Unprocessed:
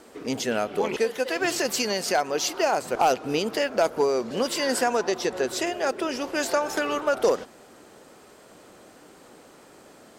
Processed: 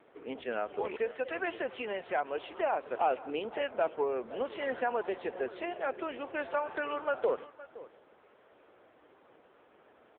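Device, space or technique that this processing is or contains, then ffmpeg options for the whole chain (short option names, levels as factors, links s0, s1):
satellite phone: -filter_complex "[0:a]asplit=3[s0][s1][s2];[s0]afade=t=out:st=2.09:d=0.02[s3];[s1]highpass=f=57:p=1,afade=t=in:st=2.09:d=0.02,afade=t=out:st=2.8:d=0.02[s4];[s2]afade=t=in:st=2.8:d=0.02[s5];[s3][s4][s5]amix=inputs=3:normalize=0,highpass=350,lowpass=3000,aecho=1:1:516:0.133,volume=0.473" -ar 8000 -c:a libopencore_amrnb -b:a 6700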